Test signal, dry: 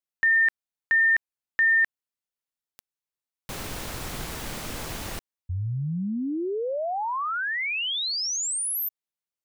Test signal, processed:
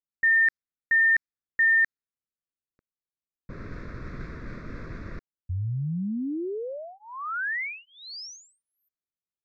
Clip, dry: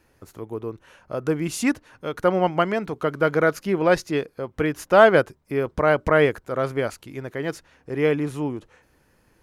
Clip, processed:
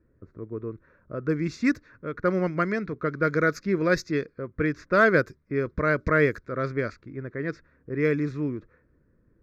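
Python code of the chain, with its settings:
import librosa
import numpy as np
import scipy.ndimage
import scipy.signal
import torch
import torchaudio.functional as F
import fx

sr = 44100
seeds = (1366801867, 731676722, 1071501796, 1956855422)

y = fx.fixed_phaser(x, sr, hz=3000.0, stages=6)
y = fx.env_lowpass(y, sr, base_hz=780.0, full_db=-19.0)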